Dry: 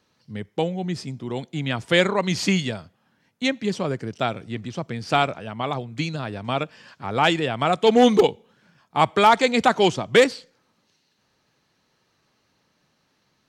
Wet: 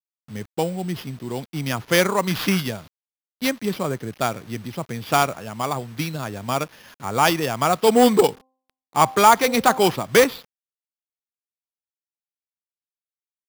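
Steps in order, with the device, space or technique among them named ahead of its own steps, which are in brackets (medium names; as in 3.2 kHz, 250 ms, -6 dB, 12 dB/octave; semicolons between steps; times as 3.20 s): early 8-bit sampler (sample-rate reducer 8.1 kHz, jitter 0%; bit crusher 8-bit); dynamic bell 1.1 kHz, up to +4 dB, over -36 dBFS, Q 1.8; 8.27–9.91 s: de-hum 260.4 Hz, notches 4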